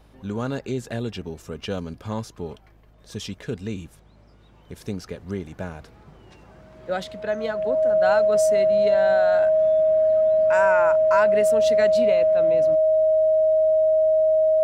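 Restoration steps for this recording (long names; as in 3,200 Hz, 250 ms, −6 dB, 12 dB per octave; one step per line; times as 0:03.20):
hum removal 52.4 Hz, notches 3
notch filter 630 Hz, Q 30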